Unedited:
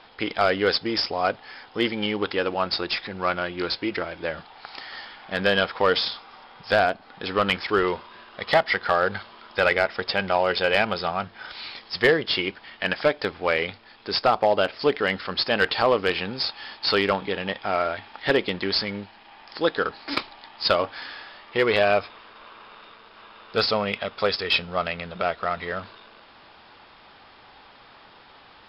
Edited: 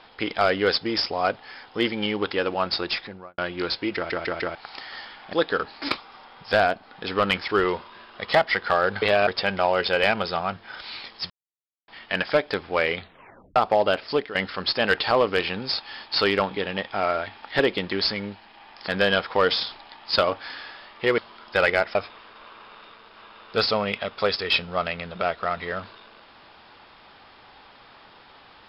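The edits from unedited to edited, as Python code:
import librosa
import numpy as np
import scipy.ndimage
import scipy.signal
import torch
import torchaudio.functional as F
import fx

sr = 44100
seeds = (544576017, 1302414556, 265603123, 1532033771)

y = fx.studio_fade_out(x, sr, start_s=2.92, length_s=0.46)
y = fx.edit(y, sr, fx.stutter_over(start_s=3.95, slice_s=0.15, count=4),
    fx.swap(start_s=5.33, length_s=0.84, other_s=19.59, other_length_s=0.65),
    fx.swap(start_s=9.21, length_s=0.77, other_s=21.7, other_length_s=0.25),
    fx.silence(start_s=12.01, length_s=0.58),
    fx.tape_stop(start_s=13.68, length_s=0.59),
    fx.fade_out_to(start_s=14.8, length_s=0.26, floor_db=-14.0), tone=tone)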